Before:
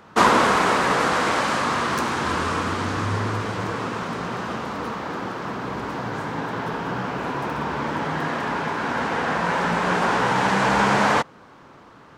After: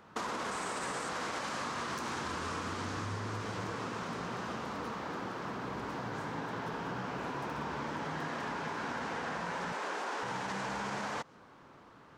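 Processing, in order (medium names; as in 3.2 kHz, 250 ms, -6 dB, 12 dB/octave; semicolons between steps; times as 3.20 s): dynamic bell 6.1 kHz, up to +5 dB, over -45 dBFS, Q 1.1; peak limiter -13.5 dBFS, peak gain reduction 10 dB; 0.51–1.09 s: peaking EQ 8.3 kHz +11.5 dB 0.37 oct; 9.72–10.23 s: high-pass 290 Hz 24 dB/octave; compression, threshold -25 dBFS, peak gain reduction 6.5 dB; trim -9 dB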